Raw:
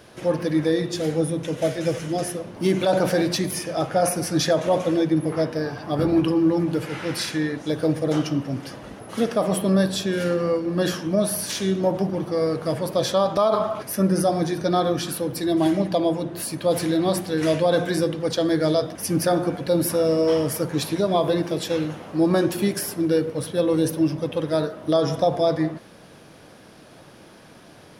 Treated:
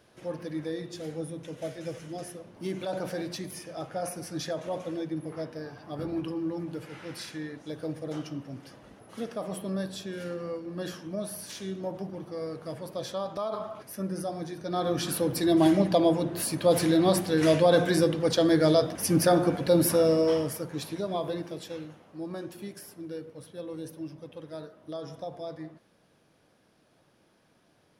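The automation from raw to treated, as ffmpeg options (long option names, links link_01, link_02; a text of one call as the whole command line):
ffmpeg -i in.wav -af "volume=-1dB,afade=type=in:start_time=14.66:duration=0.53:silence=0.251189,afade=type=out:start_time=19.94:duration=0.68:silence=0.334965,afade=type=out:start_time=21.2:duration=0.85:silence=0.421697" out.wav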